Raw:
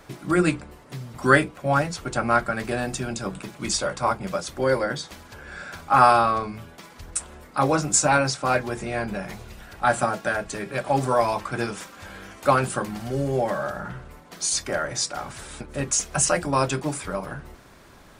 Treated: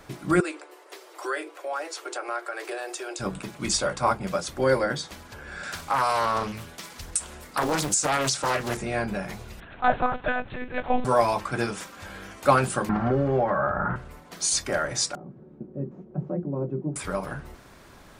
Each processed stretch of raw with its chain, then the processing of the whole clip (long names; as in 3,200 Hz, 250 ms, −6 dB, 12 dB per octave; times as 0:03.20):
0:00.40–0:03.20: Butterworth high-pass 320 Hz 96 dB per octave + downward compressor 2.5 to 1, threshold −31 dBFS
0:05.63–0:08.77: high-shelf EQ 2,700 Hz +10.5 dB + downward compressor 5 to 1, threshold −20 dBFS + highs frequency-modulated by the lows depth 0.81 ms
0:09.60–0:11.05: notch comb filter 480 Hz + one-pitch LPC vocoder at 8 kHz 250 Hz
0:12.89–0:13.96: low-pass with resonance 1,300 Hz, resonance Q 1.9 + multiband upward and downward compressor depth 100%
0:15.15–0:16.96: linear delta modulator 64 kbit/s, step −35 dBFS + flat-topped band-pass 230 Hz, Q 0.89 + comb filter 5.4 ms, depth 41%
whole clip: no processing